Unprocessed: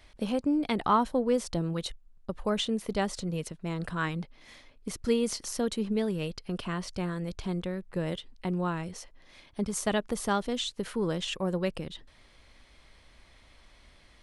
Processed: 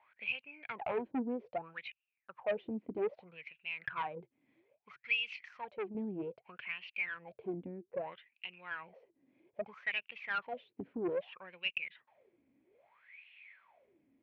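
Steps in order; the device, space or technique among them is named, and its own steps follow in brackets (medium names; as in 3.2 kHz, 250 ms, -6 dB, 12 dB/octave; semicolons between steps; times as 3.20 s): wah-wah guitar rig (wah-wah 0.62 Hz 270–2800 Hz, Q 14; valve stage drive 39 dB, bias 0.3; cabinet simulation 96–3400 Hz, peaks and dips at 130 Hz +7 dB, 290 Hz -6 dB, 1.2 kHz -5 dB, 2.4 kHz +10 dB); 4.20–5.95 s: graphic EQ 250/500/8000 Hz -7/-5/+8 dB; trim +11.5 dB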